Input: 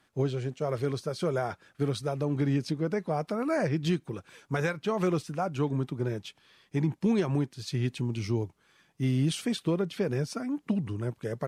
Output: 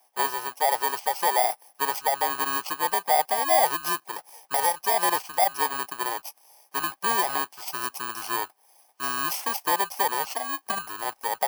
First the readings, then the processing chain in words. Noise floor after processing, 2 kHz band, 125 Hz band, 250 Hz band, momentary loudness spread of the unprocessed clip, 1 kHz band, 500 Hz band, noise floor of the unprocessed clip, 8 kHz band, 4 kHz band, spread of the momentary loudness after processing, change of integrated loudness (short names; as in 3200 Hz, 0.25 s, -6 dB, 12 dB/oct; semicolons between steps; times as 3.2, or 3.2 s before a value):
-65 dBFS, +10.0 dB, -24.5 dB, -13.5 dB, 7 LU, +15.0 dB, 0.0 dB, -69 dBFS, +15.5 dB, +9.0 dB, 9 LU, +5.0 dB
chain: FFT order left unsorted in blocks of 32 samples; resonant high-pass 790 Hz, resonance Q 4.9; gain +5 dB